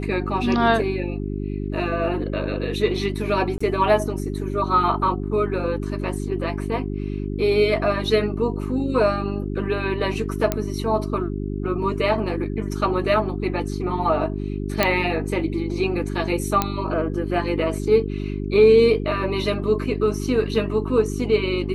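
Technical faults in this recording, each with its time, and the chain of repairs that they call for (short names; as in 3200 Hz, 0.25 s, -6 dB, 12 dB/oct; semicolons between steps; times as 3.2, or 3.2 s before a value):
hum 50 Hz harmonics 8 -27 dBFS
3.58–3.6 gap 25 ms
10.52 pop -7 dBFS
14.83 pop -3 dBFS
16.62 pop -5 dBFS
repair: de-click; de-hum 50 Hz, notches 8; interpolate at 3.58, 25 ms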